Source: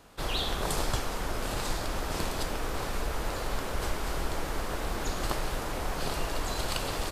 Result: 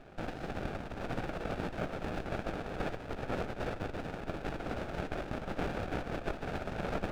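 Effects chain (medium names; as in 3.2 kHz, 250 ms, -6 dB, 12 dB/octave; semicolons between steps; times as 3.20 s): compressor with a negative ratio -34 dBFS, ratio -1; Butterworth band-pass 970 Hz, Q 1.1; sliding maximum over 33 samples; trim +7 dB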